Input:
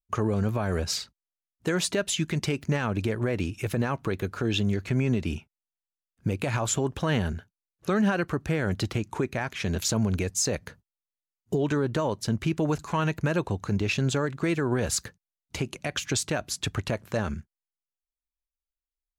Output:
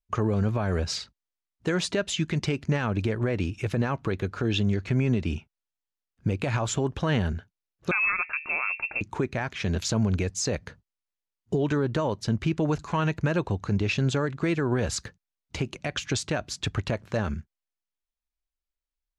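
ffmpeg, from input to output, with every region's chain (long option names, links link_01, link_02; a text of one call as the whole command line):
ffmpeg -i in.wav -filter_complex "[0:a]asettb=1/sr,asplit=3[link_01][link_02][link_03];[link_01]atrim=end=7.914[link_04];[link_02]atrim=start=7.91:end=9.01,asetpts=PTS-STARTPTS,afade=type=in:duration=0.004:curve=qsin,afade=type=out:start_time=1.096:duration=0.004:curve=qsin,lowshelf=frequency=340:gain=-3.5,bandreject=frequency=76.18:width_type=h:width=4,bandreject=frequency=152.36:width_type=h:width=4,bandreject=frequency=228.54:width_type=h:width=4,bandreject=frequency=304.72:width_type=h:width=4,bandreject=frequency=380.9:width_type=h:width=4,bandreject=frequency=457.08:width_type=h:width=4,bandreject=frequency=533.26:width_type=h:width=4,bandreject=frequency=609.44:width_type=h:width=4,bandreject=frequency=685.62:width_type=h:width=4,bandreject=frequency=761.8:width_type=h:width=4,bandreject=frequency=837.98:width_type=h:width=4,bandreject=frequency=914.16:width_type=h:width=4,bandreject=frequency=990.34:width_type=h:width=4,lowpass=frequency=2400:width_type=q:width=0.5098,lowpass=frequency=2400:width_type=q:width=0.6013,lowpass=frequency=2400:width_type=q:width=0.9,lowpass=frequency=2400:width_type=q:width=2.563,afreqshift=-2800[link_05];[link_03]atrim=start=9.006[link_06];[link_04][link_05]acrossfade=duration=0.004:curve1=hsin:curve2=qsin[link_07];[link_07][link_06]acrossfade=duration=0.004:curve1=qsin:curve2=hsin,lowpass=6200,lowshelf=frequency=82:gain=5" out.wav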